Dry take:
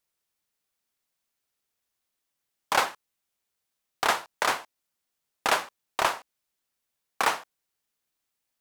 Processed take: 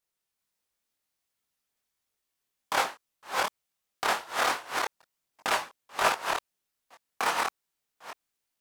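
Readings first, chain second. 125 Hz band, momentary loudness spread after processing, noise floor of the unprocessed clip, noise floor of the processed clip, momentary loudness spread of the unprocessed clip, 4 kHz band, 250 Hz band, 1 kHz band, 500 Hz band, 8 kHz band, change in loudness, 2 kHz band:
-1.0 dB, 16 LU, -83 dBFS, -84 dBFS, 8 LU, -0.5 dB, -0.5 dB, -0.5 dB, -0.5 dB, -0.5 dB, -2.0 dB, -0.5 dB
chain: chunks repeated in reverse 386 ms, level -1.5 dB; chorus voices 2, 1.4 Hz, delay 22 ms, depth 3 ms

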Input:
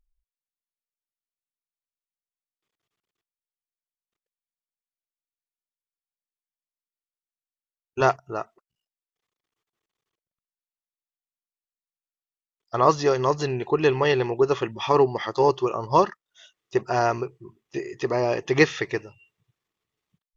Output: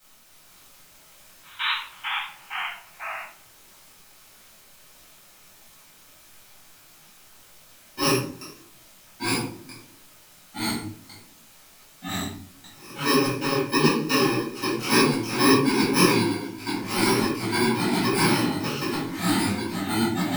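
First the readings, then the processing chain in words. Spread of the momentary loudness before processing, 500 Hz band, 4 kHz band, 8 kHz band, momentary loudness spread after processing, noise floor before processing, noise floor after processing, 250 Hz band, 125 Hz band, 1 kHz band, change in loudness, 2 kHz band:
14 LU, -4.5 dB, +10.5 dB, no reading, 17 LU, under -85 dBFS, -53 dBFS, +7.5 dB, +2.5 dB, -1.5 dB, -1.0 dB, +4.5 dB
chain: bit-reversed sample order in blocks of 64 samples; three-band isolator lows -16 dB, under 190 Hz, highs -16 dB, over 5.1 kHz; painted sound noise, 1.43–1.72 s, 860–4000 Hz -31 dBFS; trance gate "xxx...xxxx..xx." 198 bpm -24 dB; added noise white -61 dBFS; ever faster or slower copies 248 ms, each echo -2 st, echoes 3; simulated room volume 620 m³, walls furnished, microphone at 7.7 m; detune thickener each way 55 cents; trim +1.5 dB

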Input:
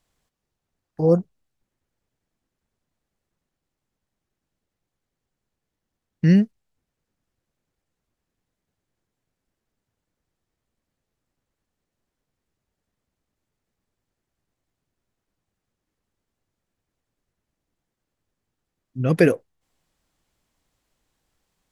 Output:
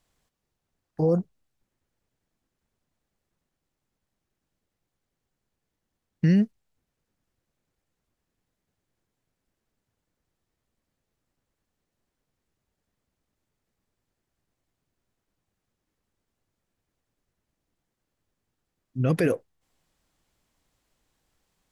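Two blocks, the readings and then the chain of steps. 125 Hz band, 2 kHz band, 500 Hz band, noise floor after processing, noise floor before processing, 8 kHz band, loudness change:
-3.5 dB, -7.0 dB, -5.5 dB, -83 dBFS, -83 dBFS, no reading, -5.0 dB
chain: peak limiter -13.5 dBFS, peak gain reduction 10 dB

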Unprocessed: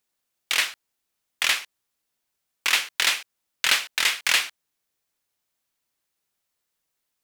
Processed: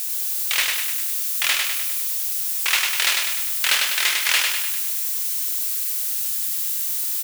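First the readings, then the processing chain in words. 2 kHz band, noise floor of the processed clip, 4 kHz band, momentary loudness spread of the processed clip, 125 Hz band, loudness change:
+2.0 dB, -25 dBFS, +3.0 dB, 4 LU, no reading, +3.0 dB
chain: zero-crossing glitches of -23 dBFS; peaking EQ 220 Hz -11.5 dB 0.69 oct; feedback delay 100 ms, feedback 55%, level -3.5 dB

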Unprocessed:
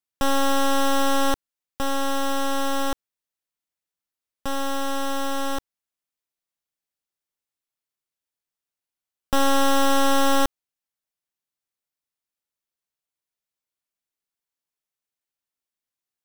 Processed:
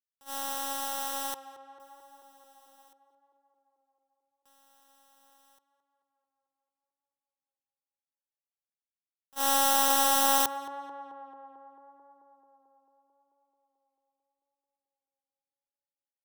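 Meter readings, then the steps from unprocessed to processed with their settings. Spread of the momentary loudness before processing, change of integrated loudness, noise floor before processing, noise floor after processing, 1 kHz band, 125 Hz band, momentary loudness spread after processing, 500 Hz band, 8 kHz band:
11 LU, -2.0 dB, under -85 dBFS, under -85 dBFS, -6.0 dB, under -25 dB, 20 LU, -13.0 dB, -0.5 dB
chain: RIAA curve recording; gate -16 dBFS, range -42 dB; peaking EQ 880 Hz +11 dB 0.3 oct; in parallel at -2.5 dB: compression, threshold -36 dBFS, peak gain reduction 20 dB; on the sum: tape echo 220 ms, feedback 80%, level -12 dB, low-pass 1.9 kHz; trim -4 dB

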